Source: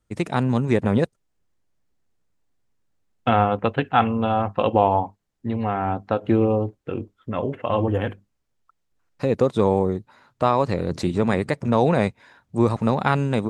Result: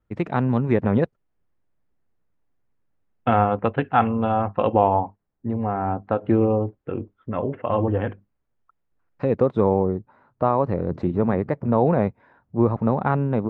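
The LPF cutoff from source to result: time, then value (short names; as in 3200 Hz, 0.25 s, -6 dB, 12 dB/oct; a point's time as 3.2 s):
4.96 s 2100 Hz
5.58 s 1100 Hz
6.17 s 1900 Hz
9.3 s 1900 Hz
9.93 s 1200 Hz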